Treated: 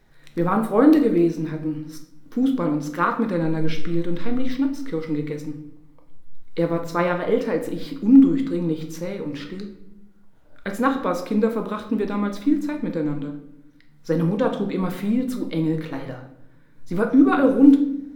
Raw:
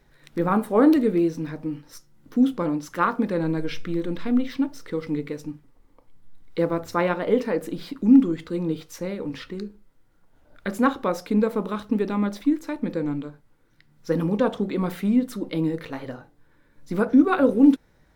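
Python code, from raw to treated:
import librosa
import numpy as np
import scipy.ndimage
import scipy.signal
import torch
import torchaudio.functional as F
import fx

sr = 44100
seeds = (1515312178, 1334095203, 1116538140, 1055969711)

y = fx.room_shoebox(x, sr, seeds[0], volume_m3=200.0, walls='mixed', distance_m=0.58)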